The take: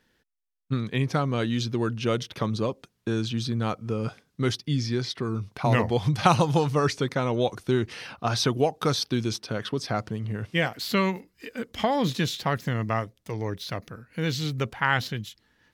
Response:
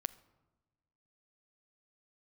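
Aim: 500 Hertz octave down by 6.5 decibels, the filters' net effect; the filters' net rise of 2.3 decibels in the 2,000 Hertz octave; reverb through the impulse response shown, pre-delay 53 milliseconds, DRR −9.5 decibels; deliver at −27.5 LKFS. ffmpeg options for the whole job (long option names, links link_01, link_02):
-filter_complex "[0:a]equalizer=frequency=500:width_type=o:gain=-8.5,equalizer=frequency=2000:width_type=o:gain=3.5,asplit=2[link_01][link_02];[1:a]atrim=start_sample=2205,adelay=53[link_03];[link_02][link_03]afir=irnorm=-1:irlink=0,volume=10.5dB[link_04];[link_01][link_04]amix=inputs=2:normalize=0,volume=-9.5dB"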